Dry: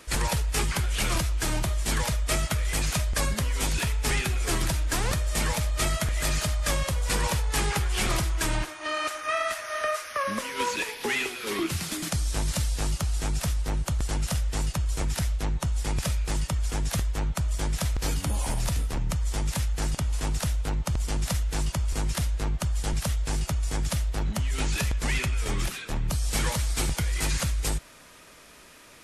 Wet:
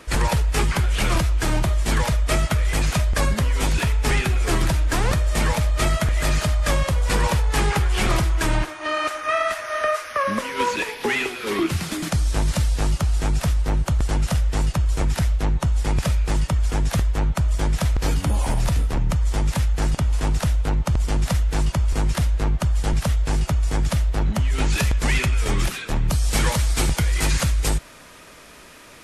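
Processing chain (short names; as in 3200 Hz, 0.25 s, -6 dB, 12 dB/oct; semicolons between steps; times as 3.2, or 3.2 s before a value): high shelf 3300 Hz -8.5 dB, from 24.7 s -3.5 dB; gain +7 dB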